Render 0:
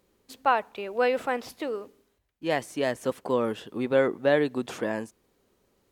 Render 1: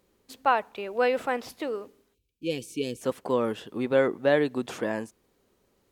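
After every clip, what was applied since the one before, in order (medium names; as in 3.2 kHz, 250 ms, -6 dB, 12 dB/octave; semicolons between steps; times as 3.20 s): time-frequency box 2.14–3.01 s, 530–2200 Hz -25 dB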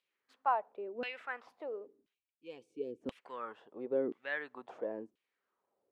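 LFO band-pass saw down 0.97 Hz 260–3000 Hz; trim -5 dB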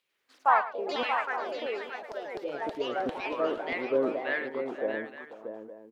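ever faster or slower copies 93 ms, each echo +3 st, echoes 3; multi-tap echo 109/485/632/863 ms -14.5/-16/-7.5/-14.5 dB; trim +6 dB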